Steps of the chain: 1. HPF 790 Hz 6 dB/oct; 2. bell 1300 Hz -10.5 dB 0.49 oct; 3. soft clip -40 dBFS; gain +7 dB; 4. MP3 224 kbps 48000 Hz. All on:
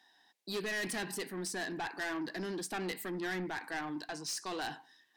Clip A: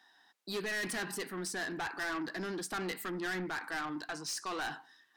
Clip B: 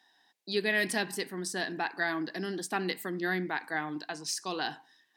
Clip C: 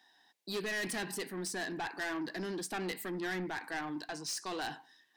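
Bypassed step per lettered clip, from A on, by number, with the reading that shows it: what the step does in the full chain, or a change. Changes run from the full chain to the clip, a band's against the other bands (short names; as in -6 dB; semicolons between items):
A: 2, 2 kHz band +2.0 dB; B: 3, distortion -7 dB; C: 4, crest factor change -1.5 dB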